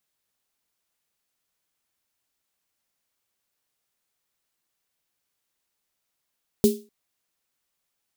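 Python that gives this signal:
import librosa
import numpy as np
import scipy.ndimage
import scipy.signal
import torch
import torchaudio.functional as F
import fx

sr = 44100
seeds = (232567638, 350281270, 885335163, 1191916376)

y = fx.drum_snare(sr, seeds[0], length_s=0.25, hz=220.0, second_hz=410.0, noise_db=-12.0, noise_from_hz=3300.0, decay_s=0.3, noise_decay_s=0.3)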